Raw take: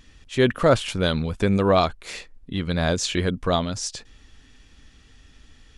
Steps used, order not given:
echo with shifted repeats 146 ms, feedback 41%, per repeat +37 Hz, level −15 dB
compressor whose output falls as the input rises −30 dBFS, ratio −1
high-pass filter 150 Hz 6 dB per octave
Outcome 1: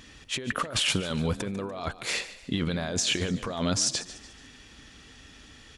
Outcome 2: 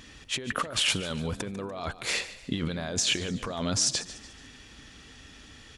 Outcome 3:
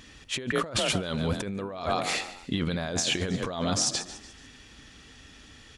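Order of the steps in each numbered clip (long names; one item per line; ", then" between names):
high-pass filter, then compressor whose output falls as the input rises, then echo with shifted repeats
compressor whose output falls as the input rises, then echo with shifted repeats, then high-pass filter
echo with shifted repeats, then high-pass filter, then compressor whose output falls as the input rises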